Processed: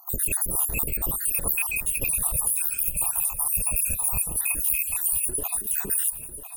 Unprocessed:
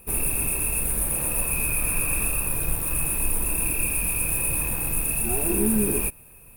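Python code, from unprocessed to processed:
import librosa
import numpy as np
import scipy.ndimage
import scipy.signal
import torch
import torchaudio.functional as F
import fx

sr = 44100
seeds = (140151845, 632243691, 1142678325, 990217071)

y = fx.spec_dropout(x, sr, seeds[0], share_pct=74)
y = fx.fixed_phaser(y, sr, hz=850.0, stages=4, at=(2.06, 4.29))
y = fx.over_compress(y, sr, threshold_db=-31.0, ratio=-0.5)
y = fx.high_shelf(y, sr, hz=7300.0, db=4.0)
y = fx.echo_feedback(y, sr, ms=997, feedback_pct=34, wet_db=-12.5)
y = F.gain(torch.from_numpy(y), 4.0).numpy()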